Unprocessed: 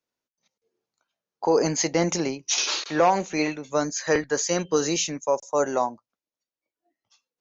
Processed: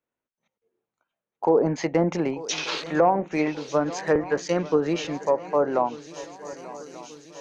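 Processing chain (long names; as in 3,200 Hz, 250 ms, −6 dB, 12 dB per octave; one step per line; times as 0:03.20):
adaptive Wiener filter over 9 samples
feedback echo with a long and a short gap by turns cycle 1,186 ms, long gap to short 3 to 1, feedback 55%, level −18 dB
treble cut that deepens with the level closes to 930 Hz, closed at −17 dBFS
level +1.5 dB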